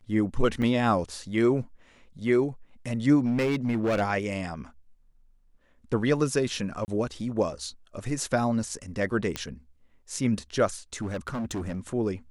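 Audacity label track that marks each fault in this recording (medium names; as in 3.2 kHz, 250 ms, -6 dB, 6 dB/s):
0.620000	0.620000	dropout 5 ms
3.240000	4.020000	clipped -21.5 dBFS
6.850000	6.880000	dropout 29 ms
9.360000	9.360000	pop -14 dBFS
11.010000	11.800000	clipped -28 dBFS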